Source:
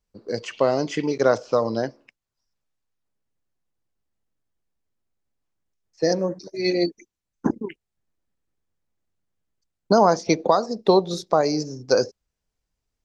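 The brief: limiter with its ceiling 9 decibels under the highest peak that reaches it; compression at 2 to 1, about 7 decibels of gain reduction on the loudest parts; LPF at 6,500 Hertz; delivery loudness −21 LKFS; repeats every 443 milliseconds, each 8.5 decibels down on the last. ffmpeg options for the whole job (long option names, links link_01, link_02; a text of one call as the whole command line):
ffmpeg -i in.wav -af "lowpass=6500,acompressor=threshold=-25dB:ratio=2,alimiter=limit=-18dB:level=0:latency=1,aecho=1:1:443|886|1329|1772:0.376|0.143|0.0543|0.0206,volume=9.5dB" out.wav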